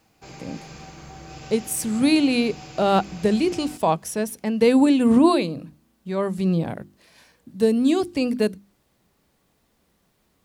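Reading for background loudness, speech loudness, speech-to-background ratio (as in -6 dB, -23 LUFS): -41.0 LUFS, -21.5 LUFS, 19.5 dB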